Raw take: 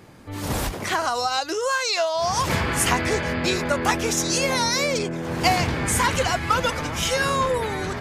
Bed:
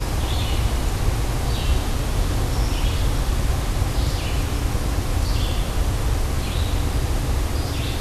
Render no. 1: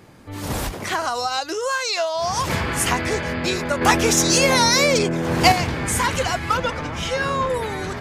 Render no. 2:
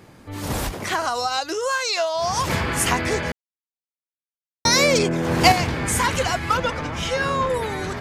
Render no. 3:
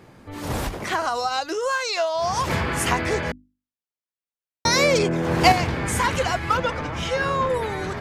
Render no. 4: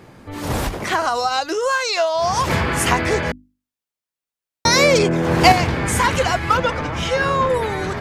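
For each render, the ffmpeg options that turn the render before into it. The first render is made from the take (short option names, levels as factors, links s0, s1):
-filter_complex "[0:a]asettb=1/sr,asplit=3[s0][s1][s2];[s0]atrim=end=3.814[s3];[s1]atrim=start=3.81:end=5.52,asetpts=PTS-STARTPTS,afade=t=in:d=0.004:c=qsin,afade=t=out:st=1.706:d=0.004:c=qsin,acontrast=55[s4];[s2]atrim=start=5.516[s5];[s3][s4]acrossfade=d=0.004:c1=hsin:c2=qsin[s6];[s6][s5]acrossfade=d=0.004:c1=qsin:c2=hsin,asettb=1/sr,asplit=3[s7][s8][s9];[s7]atrim=end=6.574[s10];[s8]atrim=start=6.57:end=7.5,asetpts=PTS-STARTPTS,afade=t=in:d=0.004:c=qsin,afade=t=out:st=0.926:d=0.004:c=qsin,aemphasis=mode=reproduction:type=50fm[s11];[s9]atrim=start=7.496[s12];[s10][s11]acrossfade=d=0.004:c1=hsin:c2=qsin[s13];[s13][s12]acrossfade=d=0.004:c1=qsin:c2=hsin"
-filter_complex "[0:a]asplit=3[s0][s1][s2];[s0]atrim=end=3.32,asetpts=PTS-STARTPTS,afade=t=out:st=3.316:d=0.004:c=hsin[s3];[s1]atrim=start=3.32:end=4.65,asetpts=PTS-STARTPTS,volume=0[s4];[s2]atrim=start=4.65,asetpts=PTS-STARTPTS,afade=t=in:d=0.004:c=hsin[s5];[s3][s4][s5]concat=n=3:v=0:a=1"
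-af "highshelf=f=3800:g=-6,bandreject=f=50:t=h:w=6,bandreject=f=100:t=h:w=6,bandreject=f=150:t=h:w=6,bandreject=f=200:t=h:w=6,bandreject=f=250:t=h:w=6,bandreject=f=300:t=h:w=6"
-af "volume=1.68,alimiter=limit=0.891:level=0:latency=1"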